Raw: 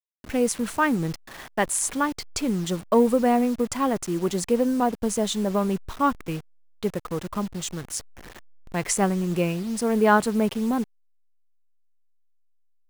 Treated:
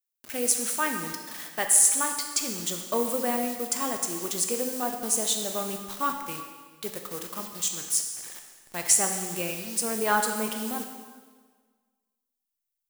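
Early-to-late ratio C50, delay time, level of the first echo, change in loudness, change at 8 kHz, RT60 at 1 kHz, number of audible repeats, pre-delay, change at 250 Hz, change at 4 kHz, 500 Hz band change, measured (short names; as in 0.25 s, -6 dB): 5.5 dB, none, none, -1.0 dB, +7.5 dB, 1.5 s, none, 6 ms, -11.5 dB, +2.5 dB, -8.0 dB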